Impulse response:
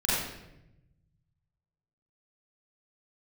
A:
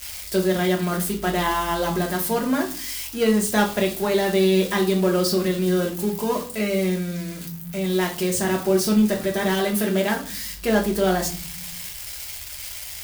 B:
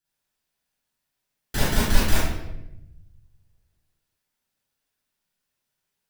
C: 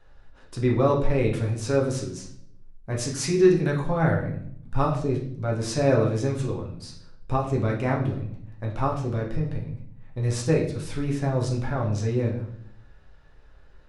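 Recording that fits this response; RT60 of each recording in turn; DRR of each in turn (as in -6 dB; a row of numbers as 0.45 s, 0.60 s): B; 0.40 s, 0.90 s, 0.65 s; -0.5 dB, -9.0 dB, -1.5 dB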